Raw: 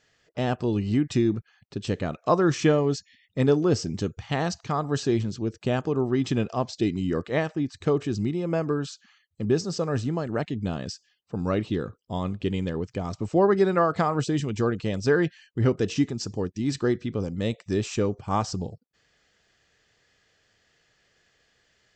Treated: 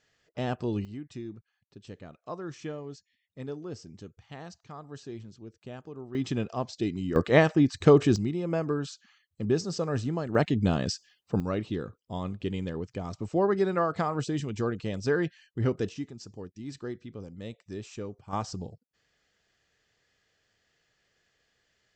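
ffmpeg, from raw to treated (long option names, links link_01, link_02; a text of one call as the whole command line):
ffmpeg -i in.wav -af "asetnsamples=nb_out_samples=441:pad=0,asendcmd='0.85 volume volume -17dB;6.15 volume volume -5dB;7.16 volume volume 5.5dB;8.16 volume volume -3dB;10.35 volume volume 4dB;11.4 volume volume -5dB;15.89 volume volume -13dB;18.33 volume volume -6.5dB',volume=-5dB" out.wav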